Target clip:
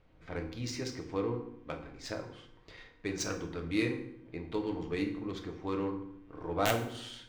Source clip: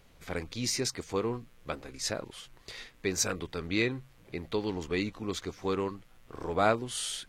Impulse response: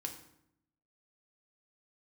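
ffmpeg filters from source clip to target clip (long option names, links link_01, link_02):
-filter_complex "[0:a]adynamicsmooth=sensitivity=2.5:basefreq=2700,aeval=exprs='(mod(4.47*val(0)+1,2)-1)/4.47':channel_layout=same[link_01];[1:a]atrim=start_sample=2205[link_02];[link_01][link_02]afir=irnorm=-1:irlink=0,volume=-2dB"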